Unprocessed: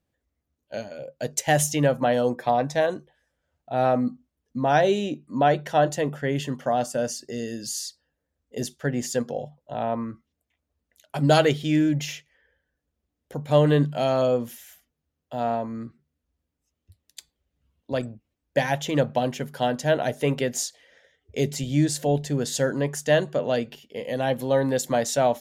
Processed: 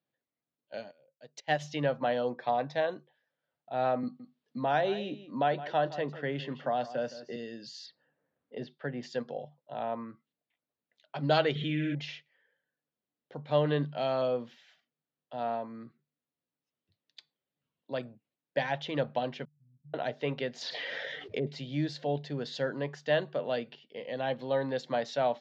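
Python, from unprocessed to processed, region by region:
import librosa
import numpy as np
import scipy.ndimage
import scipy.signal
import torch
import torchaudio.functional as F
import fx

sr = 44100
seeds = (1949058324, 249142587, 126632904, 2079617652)

y = fx.chain(x, sr, fx.high_shelf(hz=6100.0, db=7.0),
    fx.upward_expand(threshold_db=-30.0, expansion=2.5), at=(0.91, 1.64))
y = fx.chain(y, sr, fx.high_shelf(hz=7700.0, db=-5.5),
    fx.echo_single(ms=165, db=-15.5),
    fx.band_squash(depth_pct=40), at=(4.03, 7.36))
y = fx.chain(y, sr, fx.air_absorb(metres=220.0),
    fx.band_squash(depth_pct=40), at=(7.86, 9.03))
y = fx.chain(y, sr, fx.fixed_phaser(hz=2100.0, stages=4),
    fx.room_flutter(wall_m=10.3, rt60_s=0.73),
    fx.env_flatten(amount_pct=70), at=(11.55, 11.95))
y = fx.chain(y, sr, fx.cvsd(bps=32000),
    fx.cheby2_lowpass(hz=720.0, order=4, stop_db=80),
    fx.level_steps(step_db=10), at=(19.45, 19.94))
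y = fx.chain(y, sr, fx.env_lowpass_down(base_hz=680.0, full_db=-23.5),
    fx.peak_eq(hz=9600.0, db=14.0, octaves=0.26),
    fx.env_flatten(amount_pct=70), at=(20.61, 21.47))
y = scipy.signal.sosfilt(scipy.signal.ellip(3, 1.0, 40, [130.0, 4300.0], 'bandpass', fs=sr, output='sos'), y)
y = fx.low_shelf(y, sr, hz=410.0, db=-6.0)
y = y * 10.0 ** (-5.5 / 20.0)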